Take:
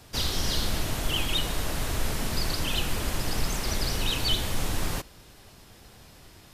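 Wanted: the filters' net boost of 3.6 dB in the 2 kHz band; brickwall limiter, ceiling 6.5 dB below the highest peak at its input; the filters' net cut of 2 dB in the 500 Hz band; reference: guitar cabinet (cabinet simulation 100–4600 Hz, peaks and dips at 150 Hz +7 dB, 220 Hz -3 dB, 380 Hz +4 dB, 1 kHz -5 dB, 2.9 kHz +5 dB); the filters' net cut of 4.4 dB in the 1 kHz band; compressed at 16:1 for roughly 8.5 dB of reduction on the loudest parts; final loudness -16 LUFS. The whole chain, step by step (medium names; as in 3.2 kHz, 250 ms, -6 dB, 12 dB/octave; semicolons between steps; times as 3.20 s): peaking EQ 500 Hz -4 dB; peaking EQ 1 kHz -3.5 dB; peaking EQ 2 kHz +4 dB; compression 16:1, threshold -28 dBFS; peak limiter -25 dBFS; cabinet simulation 100–4600 Hz, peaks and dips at 150 Hz +7 dB, 220 Hz -3 dB, 380 Hz +4 dB, 1 kHz -5 dB, 2.9 kHz +5 dB; trim +20 dB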